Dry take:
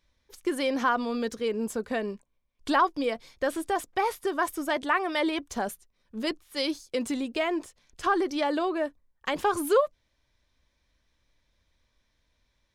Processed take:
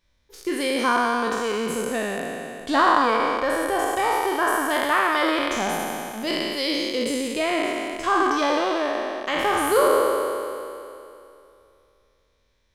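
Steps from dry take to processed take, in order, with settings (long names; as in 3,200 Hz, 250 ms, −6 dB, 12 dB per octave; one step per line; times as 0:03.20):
peak hold with a decay on every bin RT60 2.65 s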